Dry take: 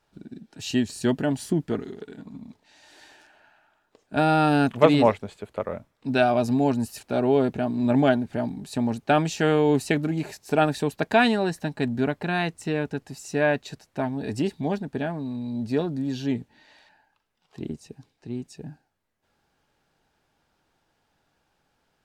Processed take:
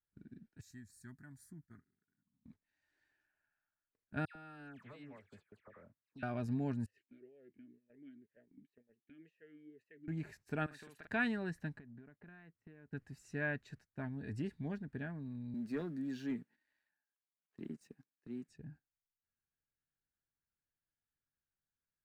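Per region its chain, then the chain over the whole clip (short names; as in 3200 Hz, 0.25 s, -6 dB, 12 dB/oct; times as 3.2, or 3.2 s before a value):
0.61–2.45 pre-emphasis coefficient 0.8 + fixed phaser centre 1200 Hz, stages 4
4.25–6.23 HPF 340 Hz 6 dB/oct + compressor 4:1, threshold -36 dBFS + dispersion lows, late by 0.102 s, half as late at 1900 Hz
6.86–10.08 compressor 12:1, threshold -28 dBFS + vowel sweep e-i 2 Hz
10.66–11.07 HPF 970 Hz 6 dB/oct + compressor 4:1, threshold -35 dBFS + doubler 48 ms -3 dB
11.79–12.92 HPF 220 Hz 6 dB/oct + compressor 20:1, threshold -36 dBFS + tape spacing loss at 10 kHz 28 dB
15.54–18.49 HPF 190 Hz 24 dB/oct + sample leveller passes 1 + high shelf 10000 Hz +10 dB
whole clip: gate -46 dBFS, range -15 dB; EQ curve 100 Hz 0 dB, 830 Hz -16 dB, 1700 Hz -2 dB, 3400 Hz -15 dB; gain -7.5 dB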